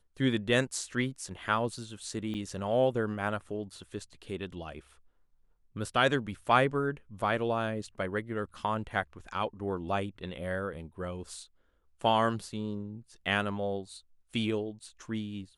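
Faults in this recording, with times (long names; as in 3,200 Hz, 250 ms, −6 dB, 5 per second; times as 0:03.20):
0:02.34–0:02.35: drop-out 8.2 ms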